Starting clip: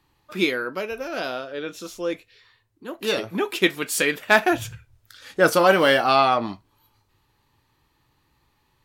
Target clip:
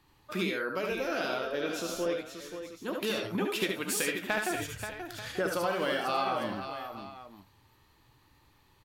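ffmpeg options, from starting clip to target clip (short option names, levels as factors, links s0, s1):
-af "acompressor=threshold=0.0316:ratio=6,aecho=1:1:70|80|531|621|887:0.531|0.447|0.376|0.141|0.188"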